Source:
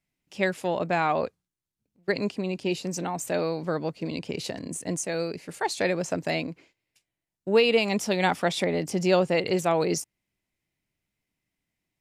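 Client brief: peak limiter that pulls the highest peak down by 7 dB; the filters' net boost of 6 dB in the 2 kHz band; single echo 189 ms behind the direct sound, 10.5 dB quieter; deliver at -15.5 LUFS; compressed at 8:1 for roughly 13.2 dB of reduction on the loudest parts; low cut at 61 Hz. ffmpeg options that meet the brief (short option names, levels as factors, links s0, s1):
-af "highpass=61,equalizer=f=2000:t=o:g=7.5,acompressor=threshold=0.0355:ratio=8,alimiter=limit=0.0668:level=0:latency=1,aecho=1:1:189:0.299,volume=10"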